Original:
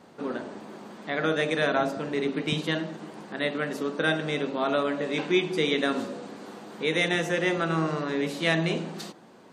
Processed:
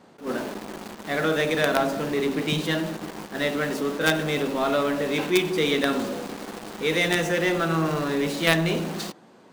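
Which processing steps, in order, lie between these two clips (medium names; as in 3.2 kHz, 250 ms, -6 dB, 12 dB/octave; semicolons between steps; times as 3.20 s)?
in parallel at -8 dB: companded quantiser 2-bit; on the sum: attacks held to a fixed rise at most 220 dB/s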